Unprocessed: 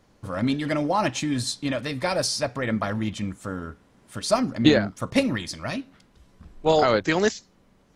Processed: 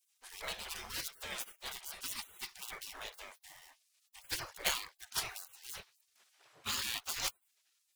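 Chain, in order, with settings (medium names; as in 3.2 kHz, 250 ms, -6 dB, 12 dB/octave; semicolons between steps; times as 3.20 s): dead-time distortion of 0.053 ms; spectral gate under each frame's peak -30 dB weak; trim +2 dB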